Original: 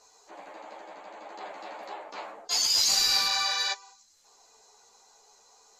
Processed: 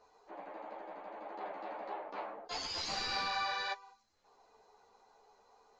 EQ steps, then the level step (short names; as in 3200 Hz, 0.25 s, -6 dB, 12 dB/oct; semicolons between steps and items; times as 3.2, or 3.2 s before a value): tape spacing loss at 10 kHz 36 dB; +1.0 dB